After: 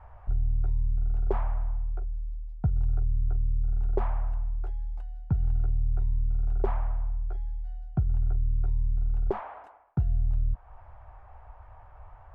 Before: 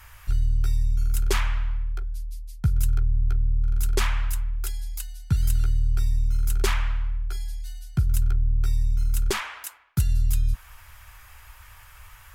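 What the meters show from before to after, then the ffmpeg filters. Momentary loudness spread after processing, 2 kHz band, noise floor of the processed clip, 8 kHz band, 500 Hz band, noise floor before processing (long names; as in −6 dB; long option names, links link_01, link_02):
8 LU, −17.5 dB, −51 dBFS, below −40 dB, −0.5 dB, −49 dBFS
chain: -filter_complex "[0:a]asplit=2[link_01][link_02];[link_02]acompressor=threshold=-31dB:ratio=6,volume=0dB[link_03];[link_01][link_03]amix=inputs=2:normalize=0,lowpass=frequency=720:width_type=q:width=3.5,volume=-6dB"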